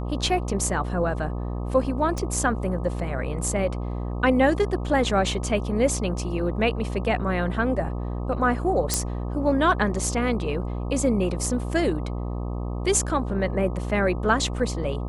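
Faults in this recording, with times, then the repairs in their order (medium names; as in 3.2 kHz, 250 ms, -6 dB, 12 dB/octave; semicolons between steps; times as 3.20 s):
buzz 60 Hz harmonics 21 -29 dBFS
2.18 s: pop -16 dBFS
8.94 s: pop -5 dBFS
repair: de-click; de-hum 60 Hz, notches 21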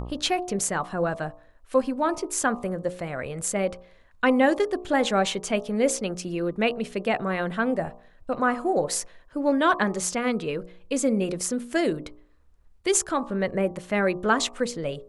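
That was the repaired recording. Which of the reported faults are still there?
nothing left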